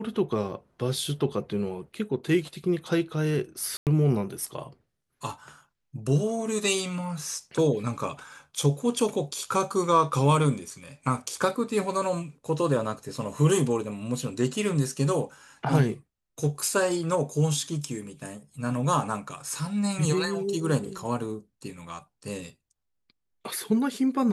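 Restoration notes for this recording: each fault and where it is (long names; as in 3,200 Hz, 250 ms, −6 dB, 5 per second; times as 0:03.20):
0:03.77–0:03.87: drop-out 98 ms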